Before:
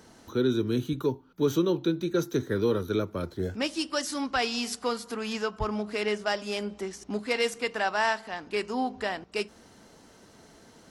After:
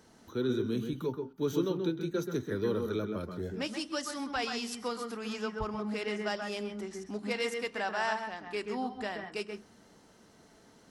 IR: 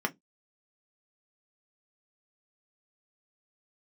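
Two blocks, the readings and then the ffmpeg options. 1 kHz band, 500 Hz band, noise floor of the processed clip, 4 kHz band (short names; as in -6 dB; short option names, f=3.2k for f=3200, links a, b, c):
-5.5 dB, -5.0 dB, -60 dBFS, -6.0 dB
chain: -filter_complex "[0:a]asplit=2[a][b];[1:a]atrim=start_sample=2205,adelay=130[c];[b][c]afir=irnorm=-1:irlink=0,volume=-13dB[d];[a][d]amix=inputs=2:normalize=0,volume=-6.5dB"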